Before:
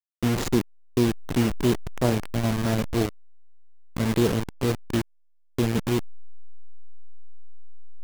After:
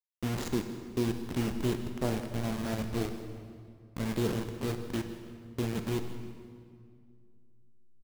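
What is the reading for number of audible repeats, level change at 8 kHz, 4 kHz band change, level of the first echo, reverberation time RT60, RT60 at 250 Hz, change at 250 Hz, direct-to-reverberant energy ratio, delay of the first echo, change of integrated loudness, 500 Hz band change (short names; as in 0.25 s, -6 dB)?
1, -8.5 dB, -8.0 dB, -17.0 dB, 2.3 s, 2.8 s, -8.0 dB, 6.5 dB, 0.162 s, -8.5 dB, -8.0 dB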